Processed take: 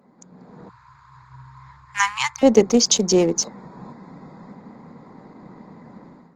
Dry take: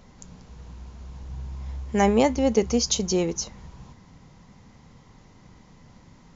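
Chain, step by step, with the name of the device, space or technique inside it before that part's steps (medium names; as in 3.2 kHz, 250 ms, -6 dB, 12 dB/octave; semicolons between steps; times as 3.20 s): local Wiener filter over 15 samples; 0.69–2.43 s: Chebyshev band-stop 130–960 Hz, order 5; video call (high-pass 180 Hz 24 dB/octave; level rider gain up to 14 dB; Opus 24 kbps 48 kHz)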